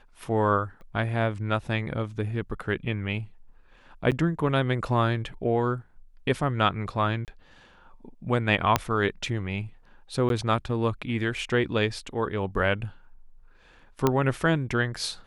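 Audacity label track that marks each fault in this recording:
0.810000	0.810000	pop -37 dBFS
4.110000	4.120000	gap 7.9 ms
7.250000	7.280000	gap 28 ms
8.760000	8.760000	pop -5 dBFS
10.290000	10.300000	gap 12 ms
14.070000	14.070000	pop -8 dBFS

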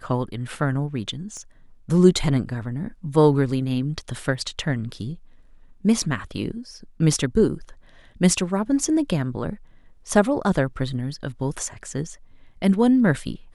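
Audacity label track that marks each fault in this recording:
1.370000	1.370000	pop -27 dBFS

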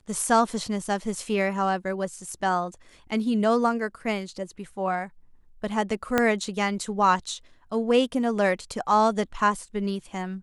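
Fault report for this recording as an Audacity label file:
6.180000	6.180000	pop -7 dBFS

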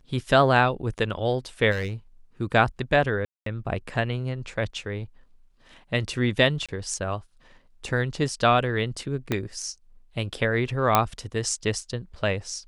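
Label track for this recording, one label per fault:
1.710000	1.930000	clipped -24 dBFS
3.250000	3.460000	gap 0.213 s
6.660000	6.690000	gap 26 ms
9.320000	9.320000	pop -11 dBFS
10.950000	10.950000	pop -3 dBFS

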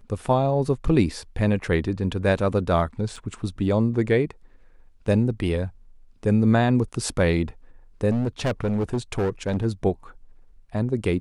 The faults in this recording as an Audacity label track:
3.160000	3.160000	gap 4.7 ms
8.100000	9.660000	clipped -19.5 dBFS

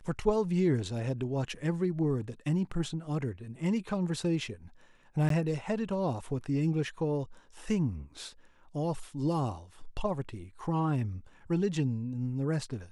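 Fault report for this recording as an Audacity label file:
5.290000	5.300000	gap 13 ms

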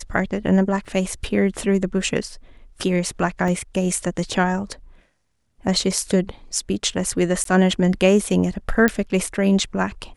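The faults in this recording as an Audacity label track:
0.850000	0.850000	gap 3.9 ms
3.480000	3.480000	gap 2.2 ms
7.440000	7.450000	gap 13 ms
8.880000	8.880000	pop -5 dBFS

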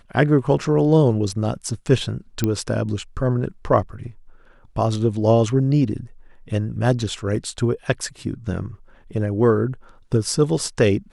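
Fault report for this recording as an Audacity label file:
2.440000	2.440000	pop -7 dBFS
7.360000	7.360000	gap 2.1 ms

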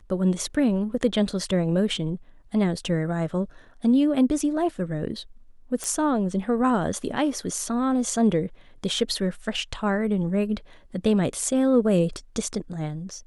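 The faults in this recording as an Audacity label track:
5.840000	5.840000	pop

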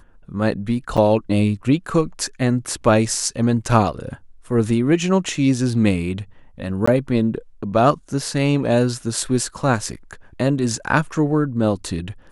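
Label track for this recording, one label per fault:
0.970000	0.980000	gap 6.3 ms
6.860000	6.880000	gap 15 ms

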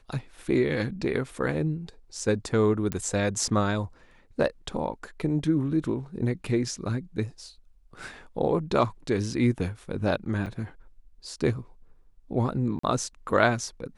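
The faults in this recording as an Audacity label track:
2.920000	2.920000	pop -15 dBFS
10.460000	10.460000	gap 2.4 ms
12.790000	12.830000	gap 44 ms

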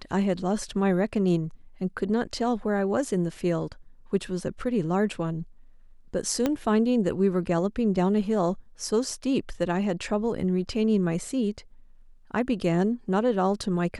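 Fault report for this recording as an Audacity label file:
6.460000	6.460000	pop -11 dBFS

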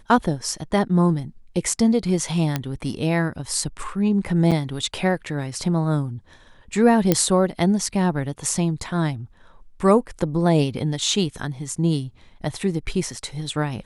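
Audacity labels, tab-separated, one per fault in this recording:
2.560000	2.560000	pop -8 dBFS
4.510000	4.520000	gap 6.5 ms
7.120000	7.120000	pop -3 dBFS

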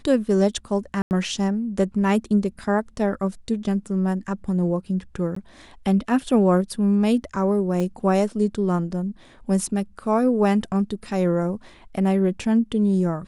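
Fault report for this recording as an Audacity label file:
1.020000	1.110000	gap 89 ms
5.350000	5.360000	gap 14 ms
7.800000	7.800000	gap 2 ms

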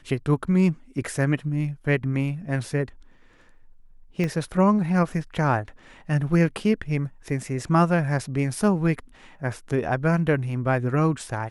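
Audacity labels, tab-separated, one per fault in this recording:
4.240000	4.240000	pop -16 dBFS

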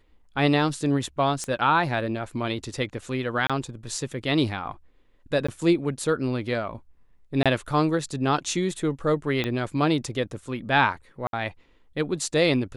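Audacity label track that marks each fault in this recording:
1.440000	1.440000	pop -18 dBFS
3.470000	3.500000	gap 26 ms
5.470000	5.490000	gap 15 ms
7.430000	7.460000	gap 26 ms
9.440000	9.440000	pop -13 dBFS
11.270000	11.330000	gap 62 ms

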